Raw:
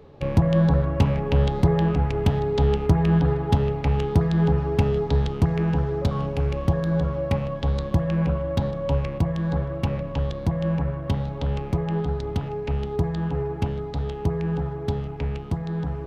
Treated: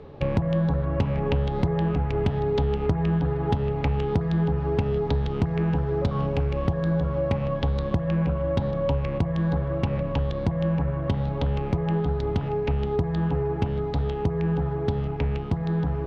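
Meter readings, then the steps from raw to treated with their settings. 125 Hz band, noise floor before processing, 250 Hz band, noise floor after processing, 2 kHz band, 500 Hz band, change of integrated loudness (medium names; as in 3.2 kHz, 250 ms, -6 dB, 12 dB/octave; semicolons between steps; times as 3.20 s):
-2.0 dB, -33 dBFS, -1.5 dB, -29 dBFS, -1.0 dB, -0.5 dB, -1.5 dB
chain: Bessel low-pass 4 kHz, order 2; compression, threshold -25 dBFS, peak gain reduction 12 dB; trim +4.5 dB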